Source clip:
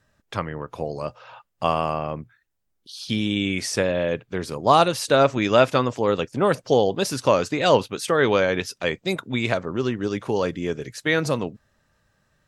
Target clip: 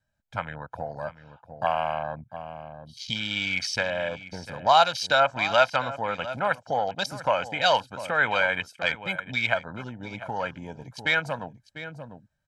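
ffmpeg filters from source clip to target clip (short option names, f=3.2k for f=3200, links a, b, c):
-filter_complex "[0:a]afwtdn=0.0224,aecho=1:1:1.3:0.73,aecho=1:1:697:0.158,acrossover=split=730|2500[a][b][c];[a]acompressor=threshold=-38dB:ratio=4[d];[d][b][c]amix=inputs=3:normalize=0"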